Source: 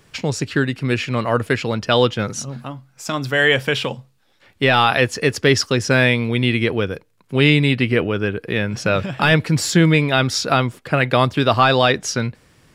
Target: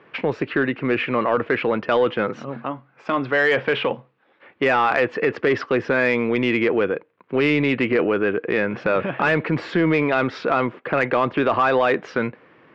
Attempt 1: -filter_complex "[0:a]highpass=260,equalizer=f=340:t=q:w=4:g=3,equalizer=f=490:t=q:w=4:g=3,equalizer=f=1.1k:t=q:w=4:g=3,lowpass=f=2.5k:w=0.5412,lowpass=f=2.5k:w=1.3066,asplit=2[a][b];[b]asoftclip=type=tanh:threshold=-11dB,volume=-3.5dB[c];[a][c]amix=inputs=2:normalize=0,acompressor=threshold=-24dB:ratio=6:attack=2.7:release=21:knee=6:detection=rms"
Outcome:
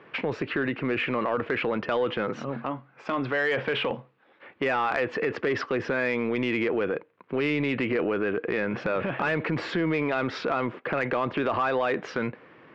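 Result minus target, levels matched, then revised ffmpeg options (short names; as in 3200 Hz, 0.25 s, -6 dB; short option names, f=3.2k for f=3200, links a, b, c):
compressor: peak gain reduction +7.5 dB
-filter_complex "[0:a]highpass=260,equalizer=f=340:t=q:w=4:g=3,equalizer=f=490:t=q:w=4:g=3,equalizer=f=1.1k:t=q:w=4:g=3,lowpass=f=2.5k:w=0.5412,lowpass=f=2.5k:w=1.3066,asplit=2[a][b];[b]asoftclip=type=tanh:threshold=-11dB,volume=-3.5dB[c];[a][c]amix=inputs=2:normalize=0,acompressor=threshold=-15dB:ratio=6:attack=2.7:release=21:knee=6:detection=rms"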